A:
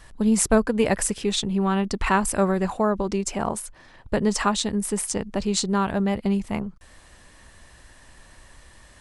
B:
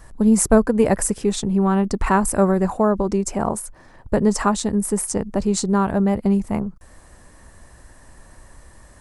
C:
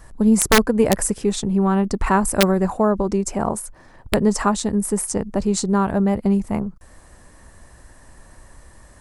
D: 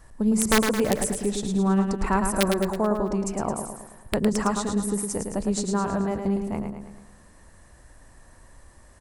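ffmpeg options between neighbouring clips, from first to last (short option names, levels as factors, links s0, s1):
-af "equalizer=f=3200:t=o:w=1.6:g=-12.5,volume=1.78"
-af "aeval=exprs='(mod(1.68*val(0)+1,2)-1)/1.68':c=same"
-af "aecho=1:1:109|218|327|436|545|654:0.501|0.261|0.136|0.0705|0.0366|0.0191,volume=0.473"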